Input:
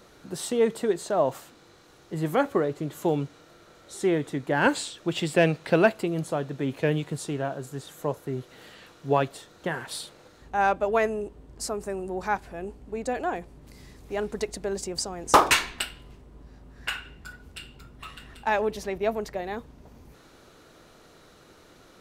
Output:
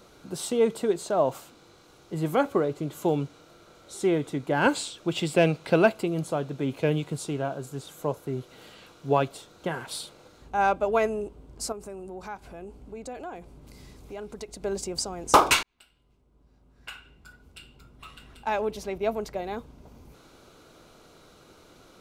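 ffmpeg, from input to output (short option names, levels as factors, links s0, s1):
-filter_complex "[0:a]asettb=1/sr,asplit=3[s0][s1][s2];[s0]atrim=end=11.724[s3];[s1]atrim=start=11.72:end=14.63,asetpts=PTS-STARTPTS,afade=t=in:d=0.004:c=qsin,afade=t=out:st=2.906:d=0.004:c=qsin,acompressor=threshold=0.00891:ratio=2:attack=3.2:release=140:knee=1:detection=peak[s4];[s2]atrim=start=14.626[s5];[s3][s4]acrossfade=d=0.004:c1=hsin:c2=qsin[s6];[s6][s5]acrossfade=d=0.004:c1=qsin:c2=hsin,asplit=2[s7][s8];[s7]atrim=end=15.63,asetpts=PTS-STARTPTS,afade=t=out:st=15.626:d=0.004:c=hsin[s9];[s8]atrim=start=15.63,asetpts=PTS-STARTPTS,afade=t=in:d=3.81[s10];[s9][s10]concat=n=2:v=0:a=1,bandreject=f=1800:w=5.6"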